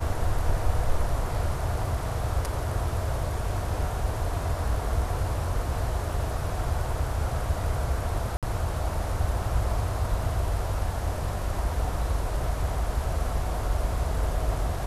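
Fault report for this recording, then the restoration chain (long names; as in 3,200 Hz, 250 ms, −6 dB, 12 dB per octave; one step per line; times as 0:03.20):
0:08.37–0:08.43: drop-out 57 ms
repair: repair the gap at 0:08.37, 57 ms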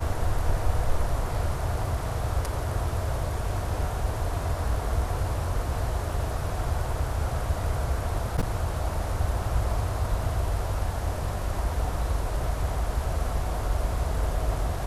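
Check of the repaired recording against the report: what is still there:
none of them is left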